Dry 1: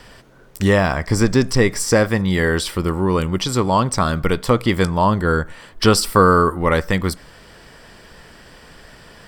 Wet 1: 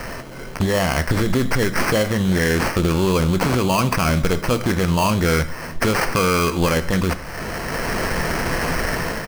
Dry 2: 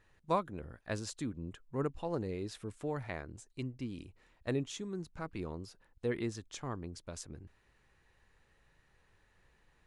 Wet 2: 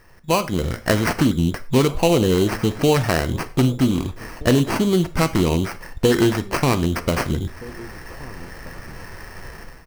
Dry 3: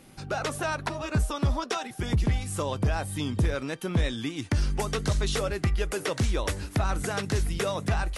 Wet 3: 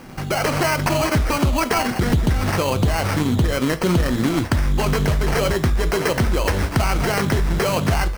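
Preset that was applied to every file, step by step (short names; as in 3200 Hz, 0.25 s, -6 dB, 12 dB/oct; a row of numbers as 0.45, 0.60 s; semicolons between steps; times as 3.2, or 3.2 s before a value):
AGC gain up to 16 dB; limiter -11 dBFS; compressor 2:1, threshold -39 dBFS; sample-rate reducer 3600 Hz, jitter 0%; outdoor echo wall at 270 m, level -20 dB; non-linear reverb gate 0.14 s falling, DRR 10 dB; Doppler distortion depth 0.21 ms; match loudness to -20 LUFS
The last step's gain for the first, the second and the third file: +13.5, +16.0, +12.5 dB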